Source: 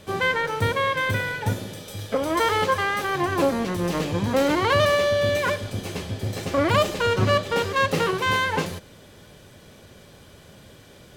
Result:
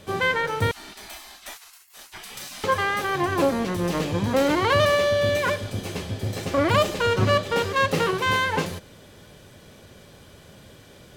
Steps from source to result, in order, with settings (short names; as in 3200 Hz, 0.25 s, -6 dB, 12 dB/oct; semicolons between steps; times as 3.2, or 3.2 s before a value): 0.71–2.64 spectral gate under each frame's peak -25 dB weak